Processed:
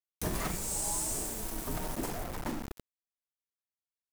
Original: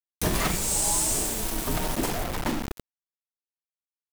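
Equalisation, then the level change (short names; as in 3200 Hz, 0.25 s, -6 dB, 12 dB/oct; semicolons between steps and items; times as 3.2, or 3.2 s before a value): dynamic EQ 3300 Hz, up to -5 dB, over -42 dBFS, Q 0.94; -8.0 dB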